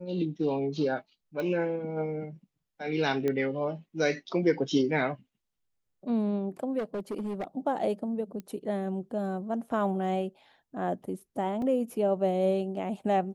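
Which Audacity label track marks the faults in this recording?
1.400000	1.400000	pop -22 dBFS
3.280000	3.280000	pop -18 dBFS
6.780000	7.440000	clipped -29.5 dBFS
8.400000	8.400000	pop -27 dBFS
11.620000	11.620000	dropout 2.3 ms

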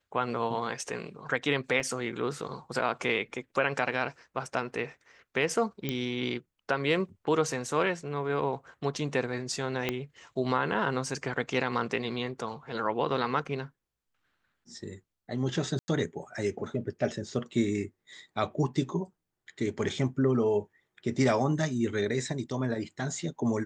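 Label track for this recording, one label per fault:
1.800000	1.800000	dropout 3.1 ms
5.890000	5.890000	pop -16 dBFS
9.890000	9.890000	pop -14 dBFS
15.790000	15.880000	dropout 90 ms

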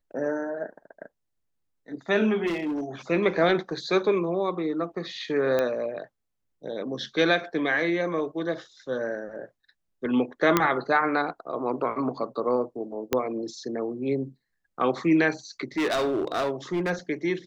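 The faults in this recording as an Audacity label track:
2.460000	2.840000	clipped -25 dBFS
5.590000	5.590000	pop -13 dBFS
10.570000	10.570000	pop -5 dBFS
13.130000	13.130000	pop -8 dBFS
15.770000	16.910000	clipped -22 dBFS

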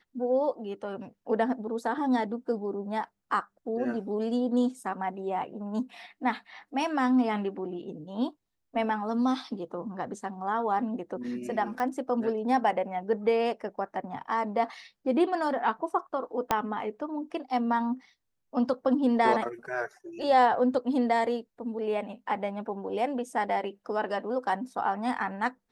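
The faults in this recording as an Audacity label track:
11.800000	11.800000	pop -20 dBFS
16.510000	16.510000	pop -10 dBFS

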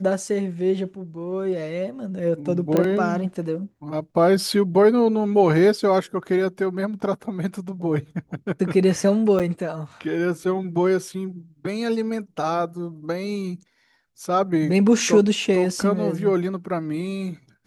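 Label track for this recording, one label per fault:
2.770000	2.770000	pop -9 dBFS
9.390000	9.400000	dropout 7.5 ms

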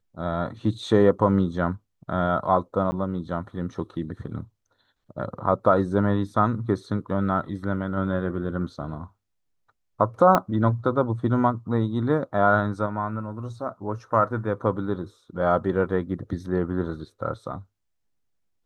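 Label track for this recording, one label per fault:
2.910000	2.920000	dropout 10 ms
10.350000	10.350000	pop -7 dBFS

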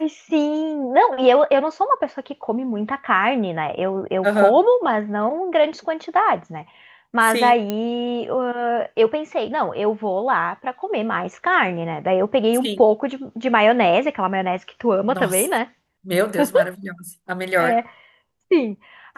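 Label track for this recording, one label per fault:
7.700000	7.700000	pop -10 dBFS

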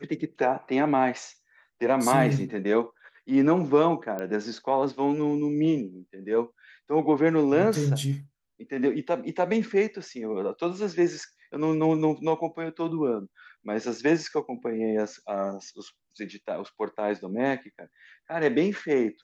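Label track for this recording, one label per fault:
4.190000	4.190000	pop -20 dBFS

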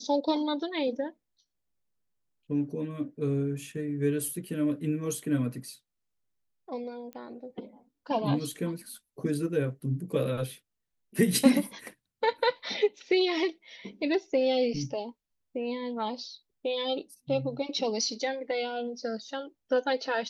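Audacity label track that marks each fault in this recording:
7.130000	7.130000	pop -29 dBFS

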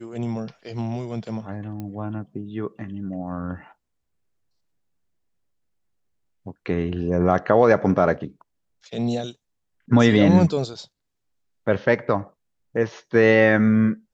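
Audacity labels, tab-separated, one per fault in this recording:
1.800000	1.800000	pop -21 dBFS

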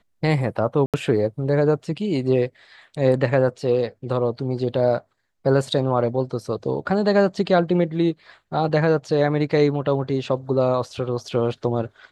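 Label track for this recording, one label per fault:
0.860000	0.940000	dropout 77 ms

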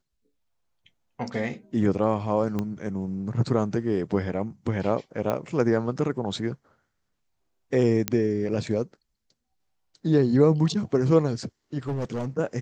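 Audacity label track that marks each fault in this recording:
2.590000	2.590000	pop -16 dBFS
5.300000	5.300000	pop -14 dBFS
8.080000	8.080000	pop -6 dBFS
11.880000	12.280000	clipped -24.5 dBFS

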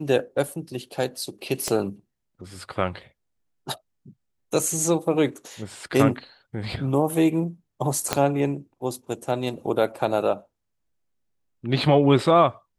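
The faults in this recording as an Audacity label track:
1.680000	1.680000	pop -11 dBFS
8.130000	8.130000	pop -5 dBFS

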